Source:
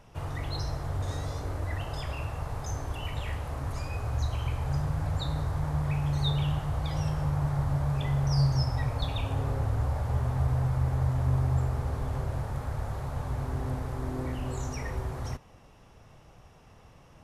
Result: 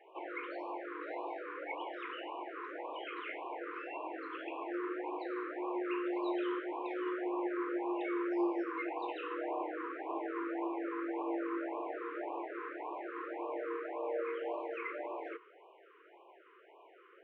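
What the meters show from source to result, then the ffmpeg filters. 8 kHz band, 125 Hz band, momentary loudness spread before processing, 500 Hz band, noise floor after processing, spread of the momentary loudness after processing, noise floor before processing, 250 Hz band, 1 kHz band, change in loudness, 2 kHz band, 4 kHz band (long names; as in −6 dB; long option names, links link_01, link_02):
can't be measured, below −40 dB, 8 LU, +3.0 dB, −61 dBFS, 7 LU, −55 dBFS, −2.0 dB, −1.5 dB, −8.0 dB, 0.0 dB, −14.0 dB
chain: -af "highpass=frequency=180:width_type=q:width=0.5412,highpass=frequency=180:width_type=q:width=1.307,lowpass=frequency=2400:width_type=q:width=0.5176,lowpass=frequency=2400:width_type=q:width=0.7071,lowpass=frequency=2400:width_type=q:width=1.932,afreqshift=210,afftfilt=real='re*(1-between(b*sr/1024,680*pow(1700/680,0.5+0.5*sin(2*PI*1.8*pts/sr))/1.41,680*pow(1700/680,0.5+0.5*sin(2*PI*1.8*pts/sr))*1.41))':imag='im*(1-between(b*sr/1024,680*pow(1700/680,0.5+0.5*sin(2*PI*1.8*pts/sr))/1.41,680*pow(1700/680,0.5+0.5*sin(2*PI*1.8*pts/sr))*1.41))':win_size=1024:overlap=0.75,volume=1dB"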